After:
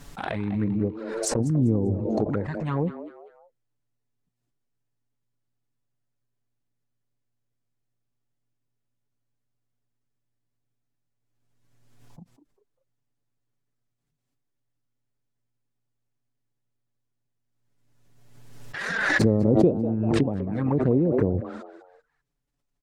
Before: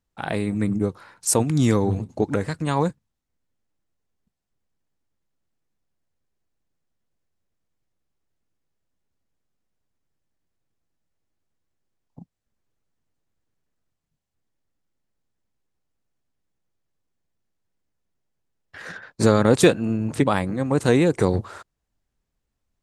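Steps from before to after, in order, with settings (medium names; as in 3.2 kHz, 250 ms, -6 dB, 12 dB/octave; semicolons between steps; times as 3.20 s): low-pass that closes with the level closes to 470 Hz, closed at -15.5 dBFS; touch-sensitive flanger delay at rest 7 ms, full sweep at -16.5 dBFS; on a send: frequency-shifting echo 197 ms, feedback 36%, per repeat +120 Hz, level -13.5 dB; on the sum: swell ahead of each attack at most 33 dB/s; trim -2.5 dB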